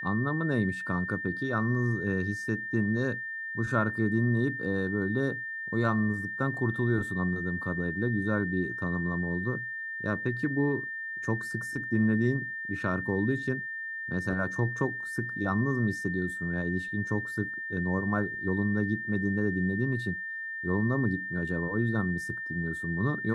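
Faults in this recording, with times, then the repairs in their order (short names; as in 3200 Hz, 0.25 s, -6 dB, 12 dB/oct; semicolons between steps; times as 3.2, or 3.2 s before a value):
tone 1800 Hz -34 dBFS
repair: notch 1800 Hz, Q 30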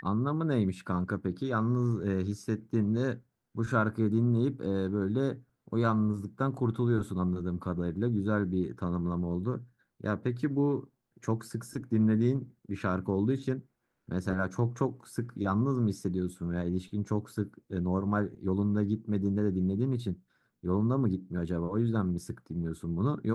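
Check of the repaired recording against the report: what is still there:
none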